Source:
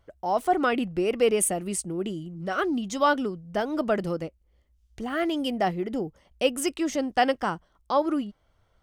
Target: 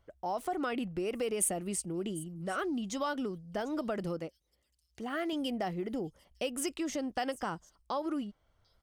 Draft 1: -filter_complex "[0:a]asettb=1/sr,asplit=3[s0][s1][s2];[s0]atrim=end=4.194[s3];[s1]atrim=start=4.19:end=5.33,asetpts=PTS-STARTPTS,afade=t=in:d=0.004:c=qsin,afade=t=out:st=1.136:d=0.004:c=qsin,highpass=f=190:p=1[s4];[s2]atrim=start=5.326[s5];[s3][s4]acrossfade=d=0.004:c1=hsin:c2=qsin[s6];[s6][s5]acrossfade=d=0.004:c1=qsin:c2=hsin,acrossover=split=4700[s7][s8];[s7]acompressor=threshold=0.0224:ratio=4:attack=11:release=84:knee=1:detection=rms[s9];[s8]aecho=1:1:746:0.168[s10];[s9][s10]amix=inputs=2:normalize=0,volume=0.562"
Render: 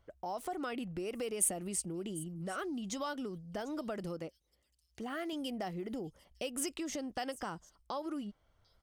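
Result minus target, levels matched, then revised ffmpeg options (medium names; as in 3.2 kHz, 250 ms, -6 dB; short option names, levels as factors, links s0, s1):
compression: peak gain reduction +5 dB
-filter_complex "[0:a]asettb=1/sr,asplit=3[s0][s1][s2];[s0]atrim=end=4.194[s3];[s1]atrim=start=4.19:end=5.33,asetpts=PTS-STARTPTS,afade=t=in:d=0.004:c=qsin,afade=t=out:st=1.136:d=0.004:c=qsin,highpass=f=190:p=1[s4];[s2]atrim=start=5.326[s5];[s3][s4]acrossfade=d=0.004:c1=hsin:c2=qsin[s6];[s6][s5]acrossfade=d=0.004:c1=qsin:c2=hsin,acrossover=split=4700[s7][s8];[s7]acompressor=threshold=0.0473:ratio=4:attack=11:release=84:knee=1:detection=rms[s9];[s8]aecho=1:1:746:0.168[s10];[s9][s10]amix=inputs=2:normalize=0,volume=0.562"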